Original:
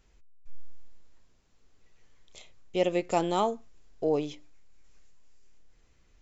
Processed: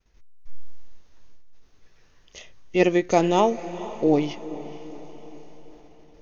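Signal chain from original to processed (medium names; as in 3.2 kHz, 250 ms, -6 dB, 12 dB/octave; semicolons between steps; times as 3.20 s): expander -56 dBFS; formant shift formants -2 st; echo that smears into a reverb 466 ms, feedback 52%, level -15 dB; trim +7.5 dB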